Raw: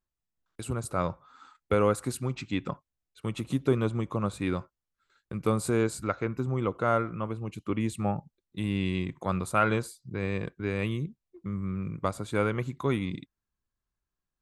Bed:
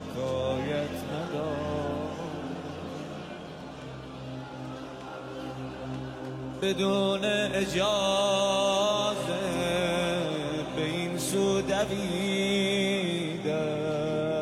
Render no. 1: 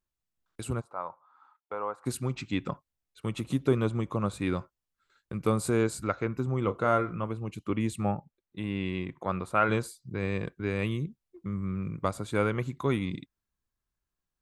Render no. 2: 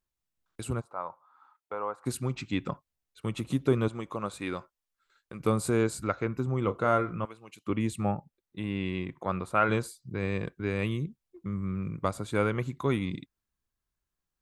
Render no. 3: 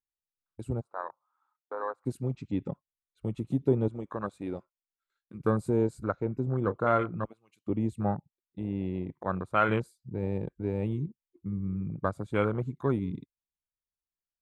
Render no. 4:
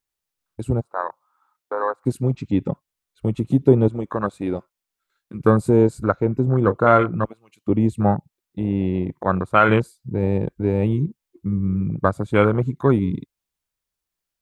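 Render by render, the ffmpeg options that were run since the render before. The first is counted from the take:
-filter_complex "[0:a]asplit=3[a][b][c];[a]afade=t=out:st=0.8:d=0.02[d];[b]bandpass=f=920:t=q:w=2.8,afade=t=in:st=0.8:d=0.02,afade=t=out:st=2.05:d=0.02[e];[c]afade=t=in:st=2.05:d=0.02[f];[d][e][f]amix=inputs=3:normalize=0,asettb=1/sr,asplit=3[g][h][i];[g]atrim=end=6.614[j];[h]atrim=start=6.61:end=7.24,asetpts=PTS-STARTPTS,afade=t=in:d=0.004:c=qsin,afade=t=out:st=0.626:d=0.004:c=qsin,asplit=2[k][l];[l]adelay=29,volume=-10dB[m];[k][m]amix=inputs=2:normalize=0,atrim=end_sample=27783[n];[i]atrim=start=7.236[o];[j][n]acrossfade=d=0.004:c1=hsin:c2=qsin[p];[p][o]acrossfade=d=0.004:c1=qsin:c2=hsin,asettb=1/sr,asplit=3[q][r][s];[q]atrim=end=8.154[t];[r]atrim=start=8.15:end=9.69,asetpts=PTS-STARTPTS,afade=t=in:d=0.004:c=qsin,afade=t=out:st=1.536:d=0.004:c=qsin,bass=f=250:g=-5,treble=f=4k:g=-12[u];[s]atrim=start=9.686[v];[t][u]acrossfade=d=0.004:c1=hsin:c2=qsin[w];[w][v]acrossfade=d=0.004:c1=qsin:c2=hsin"
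-filter_complex "[0:a]asettb=1/sr,asplit=3[a][b][c];[a]atrim=end=3.884[d];[b]atrim=start=3.88:end=5.4,asetpts=PTS-STARTPTS,afade=t=in:d=0.004:c=qsin,afade=t=out:st=1.516:d=0.004:c=qsin,equalizer=f=91:w=0.39:g=-11.5[e];[c]atrim=start=5.396[f];[d][e]acrossfade=d=0.004:c1=hsin:c2=qsin[g];[g][f]acrossfade=d=0.004:c1=qsin:c2=hsin,asettb=1/sr,asplit=3[h][i][j];[h]atrim=end=7.254[k];[i]atrim=start=7.25:end=7.67,asetpts=PTS-STARTPTS,afade=t=in:d=0.004:c=qsin,afade=t=out:st=0.416:d=0.004:c=qsin,highpass=f=1.5k:p=1[l];[j]atrim=start=7.666[m];[k][l]acrossfade=d=0.004:c1=hsin:c2=qsin[n];[n][m]acrossfade=d=0.004:c1=qsin:c2=hsin"
-af "afwtdn=0.0251"
-af "volume=11dB,alimiter=limit=-1dB:level=0:latency=1"

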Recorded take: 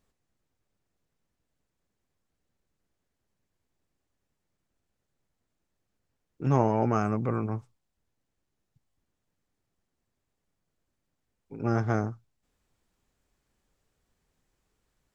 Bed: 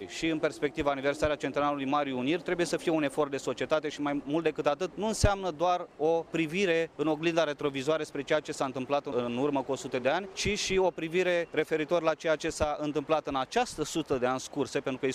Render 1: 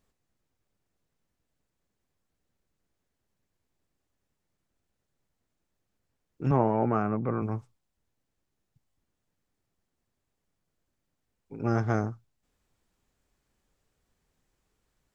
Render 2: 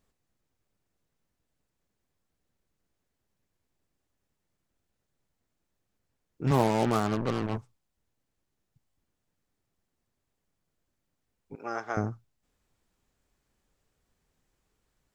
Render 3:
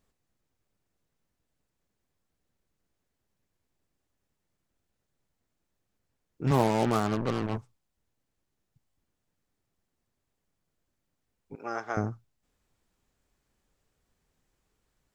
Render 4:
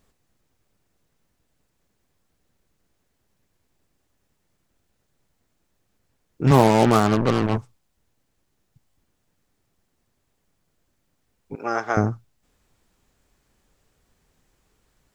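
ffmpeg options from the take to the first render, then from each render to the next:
-filter_complex "[0:a]asettb=1/sr,asplit=3[a][b][c];[a]atrim=end=6.514[d];[b]atrim=start=6.51:end=7.42,asetpts=PTS-STARTPTS,afade=t=in:d=0.004:c=qsin,afade=t=out:st=0.906:d=0.004:c=qsin,highpass=110,lowpass=2.1k[e];[c]atrim=start=7.416[f];[d][e]acrossfade=d=0.004:c1=hsin:c2=qsin[g];[g][f]acrossfade=d=0.004:c1=qsin:c2=hsin"
-filter_complex "[0:a]asettb=1/sr,asplit=3[a][b][c];[a]atrim=end=6.474[d];[b]atrim=start=6.47:end=7.58,asetpts=PTS-STARTPTS,afade=t=in:d=0.004:c=qsin,afade=t=out:st=1.106:d=0.004:c=qsin,acrusher=bits=4:mix=0:aa=0.5[e];[c]atrim=start=7.576[f];[d][e]acrossfade=d=0.004:c1=hsin:c2=qsin[g];[g][f]acrossfade=d=0.004:c1=qsin:c2=hsin,asettb=1/sr,asplit=3[h][i][j];[h]atrim=end=11.554[k];[i]atrim=start=11.55:end=11.97,asetpts=PTS-STARTPTS,afade=t=in:d=0.004:c=qsin,afade=t=out:st=0.416:d=0.004:c=qsin,highpass=620[l];[j]atrim=start=11.966[m];[k][l]acrossfade=d=0.004:c1=hsin:c2=qsin[n];[n][m]acrossfade=d=0.004:c1=qsin:c2=hsin"
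-af anull
-af "volume=9.5dB,alimiter=limit=-3dB:level=0:latency=1"

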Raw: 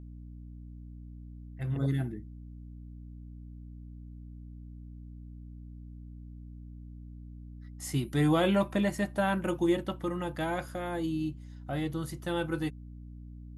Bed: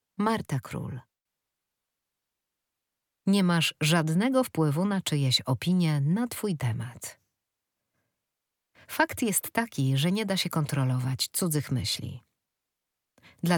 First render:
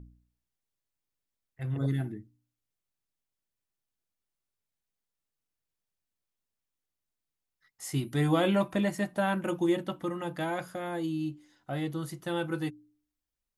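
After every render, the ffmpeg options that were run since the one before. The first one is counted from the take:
-af "bandreject=f=60:t=h:w=4,bandreject=f=120:t=h:w=4,bandreject=f=180:t=h:w=4,bandreject=f=240:t=h:w=4,bandreject=f=300:t=h:w=4"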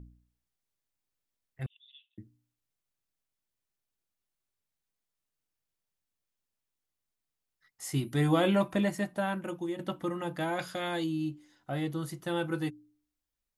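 -filter_complex "[0:a]asettb=1/sr,asplit=3[a][b][c];[a]atrim=end=1.664[d];[b]atrim=start=1.66:end=2.18,asetpts=PTS-STARTPTS,afade=t=in:d=0.004:c=qsin,afade=t=out:st=0.516:d=0.004:c=qsin,asuperpass=centerf=3200:order=8:qfactor=3[e];[c]atrim=start=2.176[f];[d][e]acrossfade=d=0.004:c1=hsin:c2=qsin[g];[g][f]acrossfade=d=0.004:c1=qsin:c2=hsin,asettb=1/sr,asplit=3[h][i][j];[h]atrim=end=10.594[k];[i]atrim=start=10.59:end=11.04,asetpts=PTS-STARTPTS,afade=t=in:d=0.004:c=qsin,afade=t=out:st=0.446:d=0.004:c=qsin,equalizer=f=3.8k:w=0.71:g=12.5[l];[j]atrim=start=11.036[m];[k][l]acrossfade=d=0.004:c1=hsin:c2=qsin[n];[n][m]acrossfade=d=0.004:c1=qsin:c2=hsin,asplit=2[o][p];[o]atrim=end=9.79,asetpts=PTS-STARTPTS,afade=t=out:st=8.82:d=0.97:silence=0.298538[q];[p]atrim=start=9.79,asetpts=PTS-STARTPTS,afade=t=in:d=0.004:c=hsin:silence=0.298538[r];[q][r]concat=n=2:v=0:a=1"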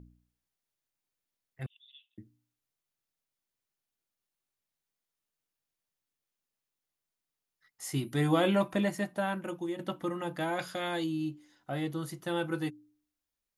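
-af "lowshelf=f=94:g=-7.5,bandreject=f=7.9k:w=22"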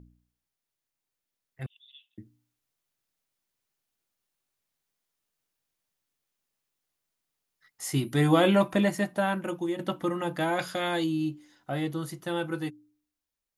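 -af "dynaudnorm=f=350:g=11:m=5dB"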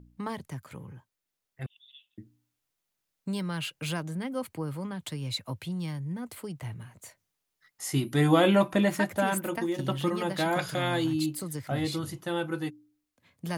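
-filter_complex "[1:a]volume=-9dB[a];[0:a][a]amix=inputs=2:normalize=0"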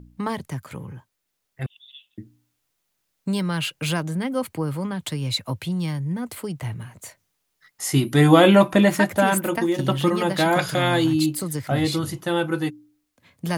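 -af "volume=8dB"

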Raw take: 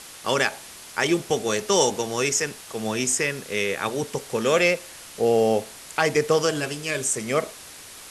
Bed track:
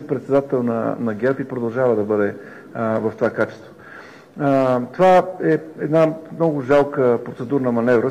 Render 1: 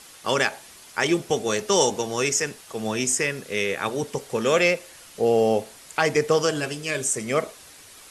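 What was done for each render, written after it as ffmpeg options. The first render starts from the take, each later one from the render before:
-af "afftdn=nr=6:nf=-43"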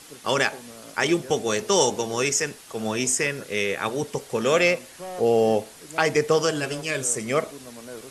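-filter_complex "[1:a]volume=-24dB[a];[0:a][a]amix=inputs=2:normalize=0"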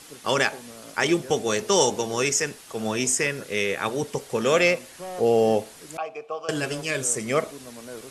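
-filter_complex "[0:a]asettb=1/sr,asplit=3[a][b][c];[a]atrim=end=5.974[d];[b]atrim=start=5.97:end=6.49,asetpts=PTS-STARTPTS,afade=t=in:d=0.004:c=qsin,afade=t=out:st=0.516:d=0.004:c=qsin,asplit=3[e][f][g];[e]bandpass=f=730:t=q:w=8,volume=0dB[h];[f]bandpass=f=1.09k:t=q:w=8,volume=-6dB[i];[g]bandpass=f=2.44k:t=q:w=8,volume=-9dB[j];[h][i][j]amix=inputs=3:normalize=0[k];[c]atrim=start=6.486[l];[d][k]acrossfade=d=0.004:c1=hsin:c2=qsin[m];[m][l]acrossfade=d=0.004:c1=qsin:c2=hsin"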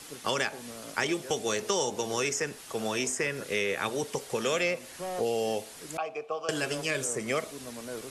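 -filter_complex "[0:a]acrossover=split=350|2100[a][b][c];[a]acompressor=threshold=-39dB:ratio=4[d];[b]acompressor=threshold=-30dB:ratio=4[e];[c]acompressor=threshold=-32dB:ratio=4[f];[d][e][f]amix=inputs=3:normalize=0"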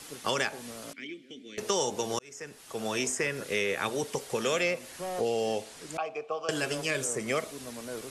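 -filter_complex "[0:a]asettb=1/sr,asplit=3[a][b][c];[a]atrim=end=0.934[d];[b]atrim=start=0.93:end=1.58,asetpts=PTS-STARTPTS,afade=t=in:d=0.004:c=qsin,afade=t=out:st=0.646:d=0.004:c=qsin,asplit=3[e][f][g];[e]bandpass=f=270:t=q:w=8,volume=0dB[h];[f]bandpass=f=2.29k:t=q:w=8,volume=-6dB[i];[g]bandpass=f=3.01k:t=q:w=8,volume=-9dB[j];[h][i][j]amix=inputs=3:normalize=0[k];[c]atrim=start=1.576[l];[d][k]acrossfade=d=0.004:c1=hsin:c2=qsin[m];[m][l]acrossfade=d=0.004:c1=qsin:c2=hsin,asettb=1/sr,asplit=3[n][o][p];[n]atrim=end=5.214[q];[o]atrim=start=5.21:end=6.51,asetpts=PTS-STARTPTS,afade=t=in:d=0.004:c=qsin,afade=t=out:st=1.296:d=0.004:c=qsin,lowpass=9k[r];[p]atrim=start=6.506[s];[q][r]acrossfade=d=0.004:c1=hsin:c2=qsin[t];[t][s]acrossfade=d=0.004:c1=qsin:c2=hsin,asplit=2[u][v];[u]atrim=end=2.19,asetpts=PTS-STARTPTS,afade=t=out:st=2.186:d=0.004:c=hsin[w];[v]atrim=start=2.19,asetpts=PTS-STARTPTS,afade=t=in:d=0.79[x];[w][x]concat=n=2:v=0:a=1"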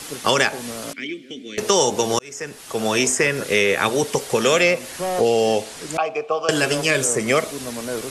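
-af "volume=11.5dB,alimiter=limit=-2dB:level=0:latency=1"

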